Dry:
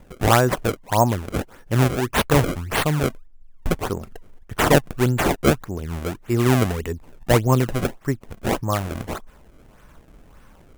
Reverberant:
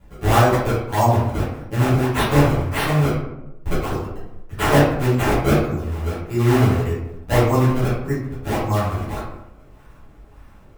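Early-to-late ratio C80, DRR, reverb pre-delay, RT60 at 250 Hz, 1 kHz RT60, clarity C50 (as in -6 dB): 5.0 dB, -13.5 dB, 7 ms, 1.0 s, 0.85 s, 1.0 dB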